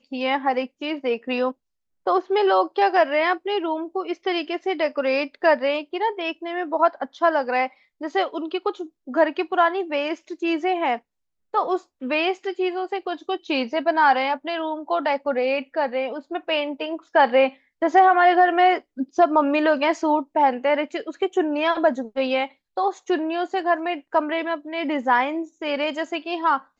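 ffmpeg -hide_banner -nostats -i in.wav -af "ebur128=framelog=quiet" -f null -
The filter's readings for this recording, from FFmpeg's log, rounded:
Integrated loudness:
  I:         -22.5 LUFS
  Threshold: -32.5 LUFS
Loudness range:
  LRA:         5.5 LU
  Threshold: -42.4 LUFS
  LRA low:   -24.4 LUFS
  LRA high:  -18.9 LUFS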